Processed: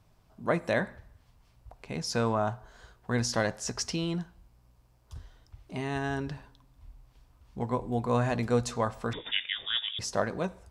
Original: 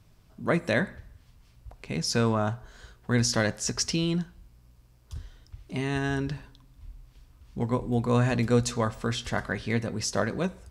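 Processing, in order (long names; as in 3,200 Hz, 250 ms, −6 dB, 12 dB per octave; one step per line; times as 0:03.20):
parametric band 800 Hz +7.5 dB 1.3 octaves
0:09.13–0:09.99: voice inversion scrambler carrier 3,600 Hz
level −5.5 dB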